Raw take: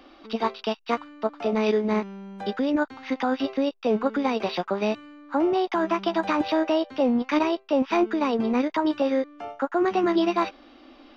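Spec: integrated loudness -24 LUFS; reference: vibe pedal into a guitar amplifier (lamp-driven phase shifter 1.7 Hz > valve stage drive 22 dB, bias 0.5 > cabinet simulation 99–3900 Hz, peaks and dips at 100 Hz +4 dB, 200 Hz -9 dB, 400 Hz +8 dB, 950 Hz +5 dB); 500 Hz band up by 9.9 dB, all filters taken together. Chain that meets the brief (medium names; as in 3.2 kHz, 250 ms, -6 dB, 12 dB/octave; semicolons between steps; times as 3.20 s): peaking EQ 500 Hz +8.5 dB; lamp-driven phase shifter 1.7 Hz; valve stage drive 22 dB, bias 0.5; cabinet simulation 99–3900 Hz, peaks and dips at 100 Hz +4 dB, 200 Hz -9 dB, 400 Hz +8 dB, 950 Hz +5 dB; trim +2.5 dB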